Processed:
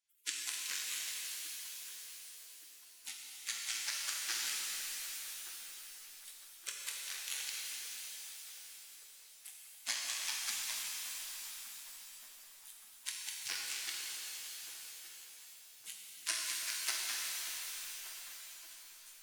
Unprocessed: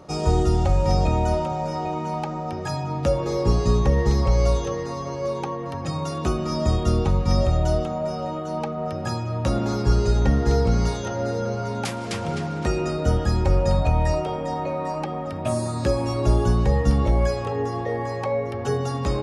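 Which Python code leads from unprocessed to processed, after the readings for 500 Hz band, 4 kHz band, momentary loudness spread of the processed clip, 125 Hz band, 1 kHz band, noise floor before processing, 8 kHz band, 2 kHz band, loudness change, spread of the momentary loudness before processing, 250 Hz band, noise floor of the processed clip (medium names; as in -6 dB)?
under -40 dB, -3.0 dB, 15 LU, under -40 dB, -28.0 dB, -30 dBFS, +2.0 dB, -7.0 dB, -16.0 dB, 8 LU, under -40 dB, -58 dBFS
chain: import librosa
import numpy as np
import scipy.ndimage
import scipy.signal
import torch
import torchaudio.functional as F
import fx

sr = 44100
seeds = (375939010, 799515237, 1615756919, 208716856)

p1 = fx.high_shelf(x, sr, hz=2300.0, db=5.0)
p2 = fx.cheby_harmonics(p1, sr, harmonics=(2, 3, 6), levels_db=(-44, -9, -35), full_scale_db=-7.5)
p3 = fx.spec_gate(p2, sr, threshold_db=-30, keep='weak')
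p4 = np.sign(p3) * np.maximum(np.abs(p3) - 10.0 ** (-51.5 / 20.0), 0.0)
p5 = p3 + F.gain(torch.from_numpy(p4), -8.0).numpy()
p6 = fx.echo_filtered(p5, sr, ms=1171, feedback_pct=61, hz=1200.0, wet_db=-11.0)
p7 = fx.rev_shimmer(p6, sr, seeds[0], rt60_s=3.6, semitones=7, shimmer_db=-2, drr_db=-1.5)
y = F.gain(torch.from_numpy(p7), 1.0).numpy()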